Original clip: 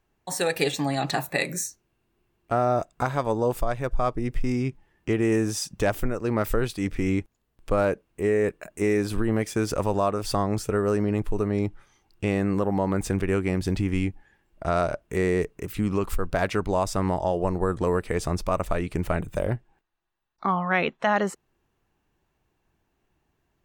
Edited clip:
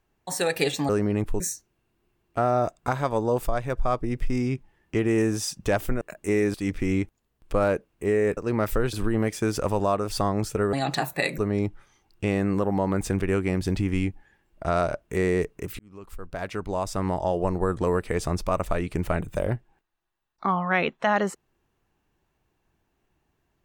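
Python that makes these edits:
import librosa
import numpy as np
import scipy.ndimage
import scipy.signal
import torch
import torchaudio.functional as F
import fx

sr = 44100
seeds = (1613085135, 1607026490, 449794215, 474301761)

y = fx.edit(x, sr, fx.swap(start_s=0.89, length_s=0.65, other_s=10.87, other_length_s=0.51),
    fx.swap(start_s=6.15, length_s=0.56, other_s=8.54, other_length_s=0.53),
    fx.fade_in_span(start_s=15.79, length_s=1.55), tone=tone)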